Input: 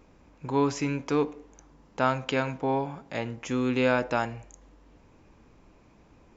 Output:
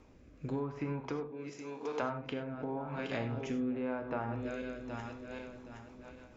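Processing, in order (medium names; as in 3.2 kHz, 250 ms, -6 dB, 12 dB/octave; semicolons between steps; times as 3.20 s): backward echo that repeats 385 ms, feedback 61%, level -11 dB; 1.28–2.01 s: high-pass 160 Hz -> 370 Hz 12 dB/octave; low-pass that closes with the level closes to 1.5 kHz, closed at -24 dBFS; compression 5:1, threshold -33 dBFS, peak gain reduction 12.5 dB; rotary cabinet horn 0.9 Hz, later 6.7 Hz, at 4.83 s; gated-style reverb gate 120 ms flat, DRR 6.5 dB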